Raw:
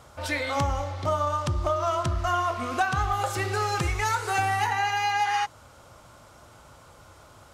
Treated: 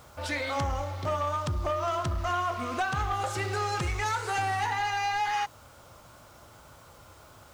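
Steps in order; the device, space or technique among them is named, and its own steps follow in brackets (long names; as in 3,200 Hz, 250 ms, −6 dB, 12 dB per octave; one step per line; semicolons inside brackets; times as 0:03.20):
compact cassette (soft clipping −21 dBFS, distortion −17 dB; low-pass filter 9,800 Hz 12 dB per octave; tape wow and flutter 29 cents; white noise bed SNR 32 dB)
level −1.5 dB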